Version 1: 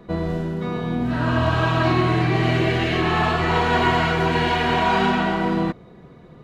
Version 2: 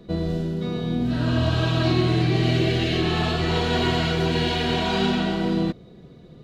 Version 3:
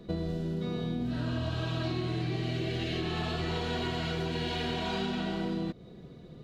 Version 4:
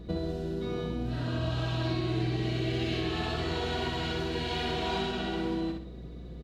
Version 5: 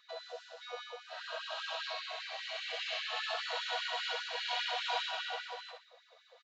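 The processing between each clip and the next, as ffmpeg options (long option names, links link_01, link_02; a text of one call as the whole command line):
ffmpeg -i in.wav -af "equalizer=frequency=1000:width_type=o:width=1:gain=-10,equalizer=frequency=2000:width_type=o:width=1:gain=-6,equalizer=frequency=4000:width_type=o:width=1:gain=6" out.wav
ffmpeg -i in.wav -af "acompressor=threshold=-27dB:ratio=6,volume=-2.5dB" out.wav
ffmpeg -i in.wav -af "aeval=exprs='val(0)+0.00631*(sin(2*PI*60*n/s)+sin(2*PI*2*60*n/s)/2+sin(2*PI*3*60*n/s)/3+sin(2*PI*4*60*n/s)/4+sin(2*PI*5*60*n/s)/5)':channel_layout=same,aecho=1:1:64|128|192|256|320:0.596|0.226|0.086|0.0327|0.0124" out.wav
ffmpeg -i in.wav -af "aresample=16000,aresample=44100,afftfilt=real='re*gte(b*sr/1024,460*pow(1500/460,0.5+0.5*sin(2*PI*5*pts/sr)))':imag='im*gte(b*sr/1024,460*pow(1500/460,0.5+0.5*sin(2*PI*5*pts/sr)))':win_size=1024:overlap=0.75" out.wav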